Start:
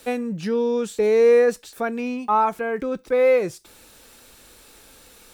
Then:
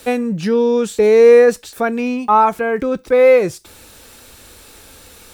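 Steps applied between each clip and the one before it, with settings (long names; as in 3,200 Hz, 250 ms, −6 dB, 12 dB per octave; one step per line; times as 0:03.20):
parametric band 81 Hz +7.5 dB 0.77 octaves
level +7 dB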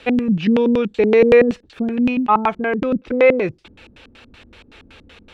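auto-filter low-pass square 5.3 Hz 250–2,800 Hz
level −2 dB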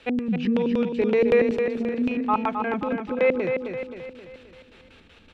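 repeating echo 264 ms, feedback 49%, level −6 dB
level −8 dB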